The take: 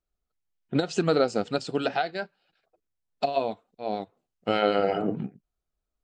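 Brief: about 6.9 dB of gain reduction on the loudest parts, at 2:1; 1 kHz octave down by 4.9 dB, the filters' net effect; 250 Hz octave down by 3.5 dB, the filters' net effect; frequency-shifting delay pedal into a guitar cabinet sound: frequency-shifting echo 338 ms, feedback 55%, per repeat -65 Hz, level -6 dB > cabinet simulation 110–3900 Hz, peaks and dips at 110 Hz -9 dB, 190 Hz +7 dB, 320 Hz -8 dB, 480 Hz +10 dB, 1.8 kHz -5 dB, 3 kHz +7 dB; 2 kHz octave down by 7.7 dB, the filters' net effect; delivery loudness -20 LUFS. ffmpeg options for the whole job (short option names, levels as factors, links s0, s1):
-filter_complex "[0:a]equalizer=f=250:t=o:g=-4,equalizer=f=1000:t=o:g=-7.5,equalizer=f=2000:t=o:g=-7,acompressor=threshold=0.02:ratio=2,asplit=8[s0][s1][s2][s3][s4][s5][s6][s7];[s1]adelay=338,afreqshift=-65,volume=0.501[s8];[s2]adelay=676,afreqshift=-130,volume=0.275[s9];[s3]adelay=1014,afreqshift=-195,volume=0.151[s10];[s4]adelay=1352,afreqshift=-260,volume=0.0832[s11];[s5]adelay=1690,afreqshift=-325,volume=0.0457[s12];[s6]adelay=2028,afreqshift=-390,volume=0.0251[s13];[s7]adelay=2366,afreqshift=-455,volume=0.0138[s14];[s0][s8][s9][s10][s11][s12][s13][s14]amix=inputs=8:normalize=0,highpass=110,equalizer=f=110:t=q:w=4:g=-9,equalizer=f=190:t=q:w=4:g=7,equalizer=f=320:t=q:w=4:g=-8,equalizer=f=480:t=q:w=4:g=10,equalizer=f=1800:t=q:w=4:g=-5,equalizer=f=3000:t=q:w=4:g=7,lowpass=f=3900:w=0.5412,lowpass=f=3900:w=1.3066,volume=4.22"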